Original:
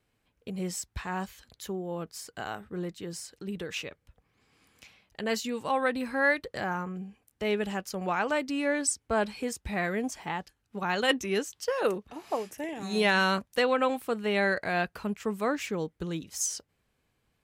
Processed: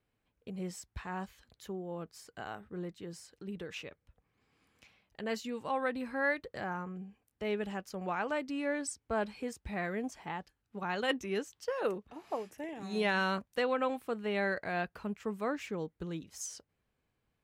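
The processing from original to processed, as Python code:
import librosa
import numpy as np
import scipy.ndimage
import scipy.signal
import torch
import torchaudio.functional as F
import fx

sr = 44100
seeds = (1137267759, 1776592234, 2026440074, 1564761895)

y = fx.high_shelf(x, sr, hz=3800.0, db=-7.5)
y = y * librosa.db_to_amplitude(-5.5)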